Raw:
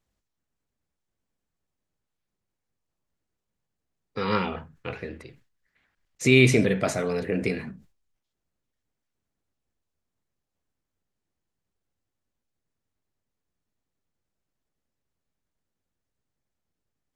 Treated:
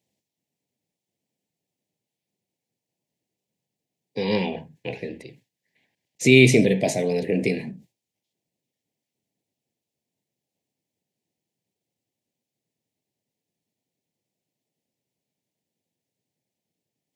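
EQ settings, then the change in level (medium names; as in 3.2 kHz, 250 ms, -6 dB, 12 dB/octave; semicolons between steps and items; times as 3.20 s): high-pass 120 Hz 24 dB/octave; Butterworth band-stop 1.3 kHz, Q 1.1; +4.0 dB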